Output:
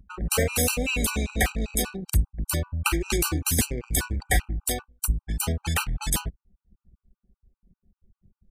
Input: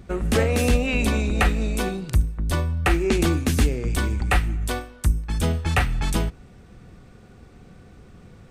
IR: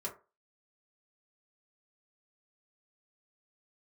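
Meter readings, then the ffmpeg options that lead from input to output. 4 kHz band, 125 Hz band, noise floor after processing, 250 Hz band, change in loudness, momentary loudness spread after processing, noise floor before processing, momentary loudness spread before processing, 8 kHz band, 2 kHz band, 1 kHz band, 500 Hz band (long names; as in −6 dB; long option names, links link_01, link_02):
0.0 dB, −5.5 dB, below −85 dBFS, −6.5 dB, −3.0 dB, 5 LU, −48 dBFS, 5 LU, +7.0 dB, −3.0 dB, −5.0 dB, −5.5 dB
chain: -af "anlmdn=10,aemphasis=mode=production:type=75fm,afftfilt=real='re*gt(sin(2*PI*5.1*pts/sr)*(1-2*mod(floor(b*sr/1024/780),2)),0)':imag='im*gt(sin(2*PI*5.1*pts/sr)*(1-2*mod(floor(b*sr/1024/780),2)),0)':win_size=1024:overlap=0.75,volume=-1.5dB"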